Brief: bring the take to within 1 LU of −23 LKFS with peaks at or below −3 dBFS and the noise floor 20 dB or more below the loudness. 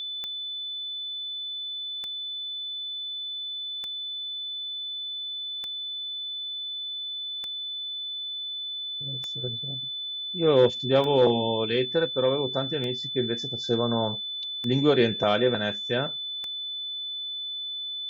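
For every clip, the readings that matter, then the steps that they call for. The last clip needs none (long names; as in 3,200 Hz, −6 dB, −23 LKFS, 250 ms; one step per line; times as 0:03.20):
number of clicks 10; interfering tone 3,500 Hz; level of the tone −31 dBFS; integrated loudness −27.5 LKFS; sample peak −8.5 dBFS; target loudness −23.0 LKFS
→ click removal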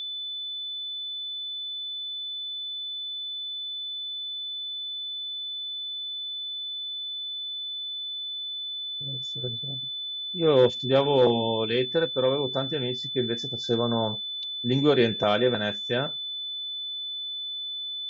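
number of clicks 0; interfering tone 3,500 Hz; level of the tone −31 dBFS
→ notch filter 3,500 Hz, Q 30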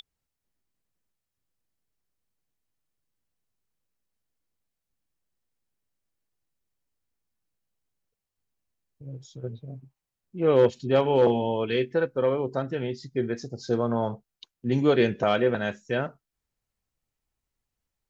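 interfering tone none found; integrated loudness −25.5 LKFS; sample peak −9.5 dBFS; target loudness −23.0 LKFS
→ level +2.5 dB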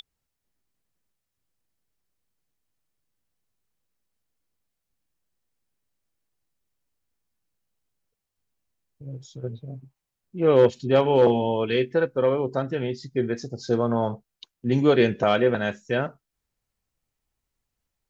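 integrated loudness −23.0 LKFS; sample peak −7.0 dBFS; background noise floor −83 dBFS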